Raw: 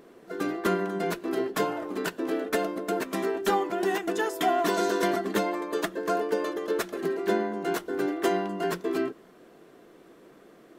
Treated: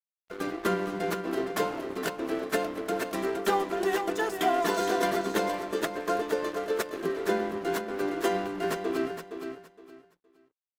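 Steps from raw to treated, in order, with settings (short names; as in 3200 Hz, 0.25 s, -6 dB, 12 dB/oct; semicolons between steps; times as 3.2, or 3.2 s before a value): notches 50/100/150/200/250/300/350 Hz; crossover distortion -40.5 dBFS; feedback echo 0.466 s, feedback 23%, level -8 dB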